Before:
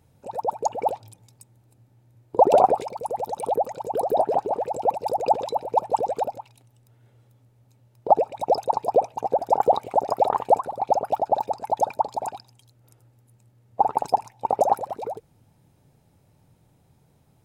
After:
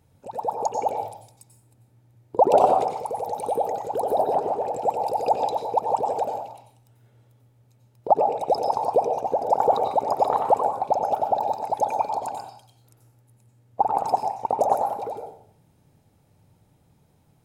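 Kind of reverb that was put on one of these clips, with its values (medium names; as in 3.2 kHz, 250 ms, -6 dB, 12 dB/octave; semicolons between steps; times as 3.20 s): plate-style reverb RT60 0.59 s, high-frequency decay 0.8×, pre-delay 80 ms, DRR 4 dB; trim -1.5 dB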